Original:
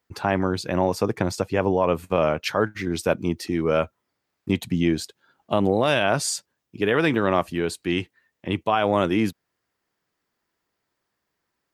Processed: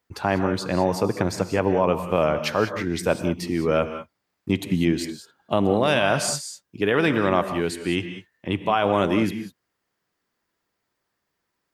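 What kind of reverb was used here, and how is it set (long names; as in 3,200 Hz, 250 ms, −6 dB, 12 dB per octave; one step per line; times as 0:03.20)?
reverb whose tail is shaped and stops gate 220 ms rising, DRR 9 dB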